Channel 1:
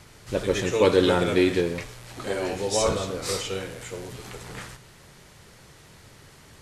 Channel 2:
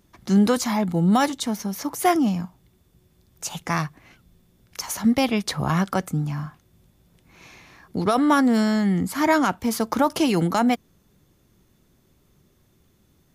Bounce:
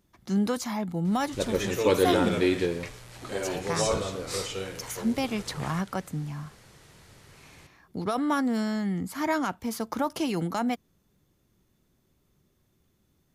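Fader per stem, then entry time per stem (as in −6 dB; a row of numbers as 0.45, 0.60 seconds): −3.5, −8.0 decibels; 1.05, 0.00 seconds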